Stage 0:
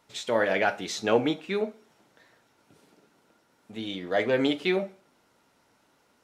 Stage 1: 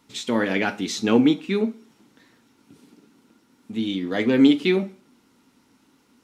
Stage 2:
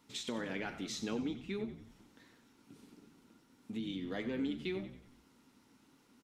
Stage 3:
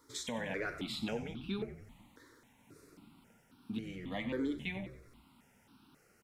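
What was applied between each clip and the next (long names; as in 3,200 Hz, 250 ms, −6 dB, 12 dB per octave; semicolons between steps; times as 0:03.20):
graphic EQ with 15 bands 250 Hz +11 dB, 630 Hz −11 dB, 1,600 Hz −4 dB; level +4.5 dB
downward compressor 3 to 1, threshold −33 dBFS, peak gain reduction 16.5 dB; on a send: echo with shifted repeats 92 ms, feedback 47%, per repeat −63 Hz, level −12 dB; on the sum: level −6.5 dB
step-sequenced phaser 3.7 Hz 730–2,000 Hz; level +5.5 dB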